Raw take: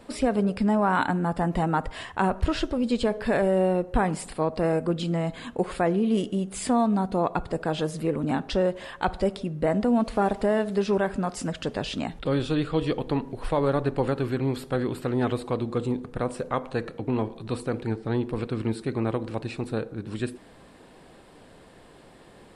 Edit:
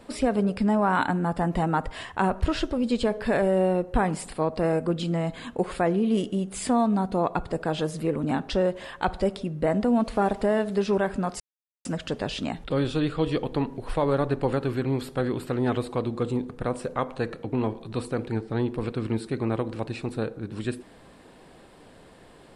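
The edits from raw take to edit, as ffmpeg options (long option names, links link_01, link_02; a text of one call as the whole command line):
ffmpeg -i in.wav -filter_complex "[0:a]asplit=2[link_01][link_02];[link_01]atrim=end=11.4,asetpts=PTS-STARTPTS,afade=type=out:start_time=11.396:duration=0.004:curve=hsin,apad=pad_dur=0.45[link_03];[link_02]atrim=start=11.4,asetpts=PTS-STARTPTS,afade=type=in:duration=0.004:curve=hsin[link_04];[link_03][link_04]concat=n=2:v=0:a=1" out.wav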